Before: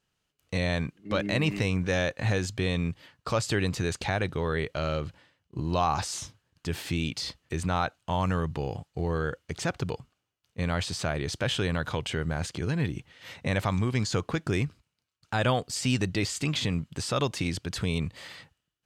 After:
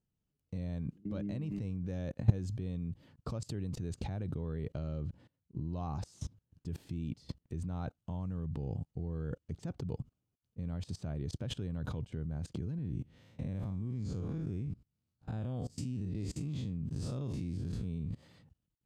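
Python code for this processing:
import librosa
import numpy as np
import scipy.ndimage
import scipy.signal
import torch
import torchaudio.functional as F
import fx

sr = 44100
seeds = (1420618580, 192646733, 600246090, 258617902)

y = fx.spec_blur(x, sr, span_ms=107.0, at=(12.78, 18.23))
y = fx.curve_eq(y, sr, hz=(230.0, 340.0, 1900.0, 6400.0), db=(0, -6, -22, -18))
y = fx.level_steps(y, sr, step_db=24)
y = F.gain(torch.from_numpy(y), 11.0).numpy()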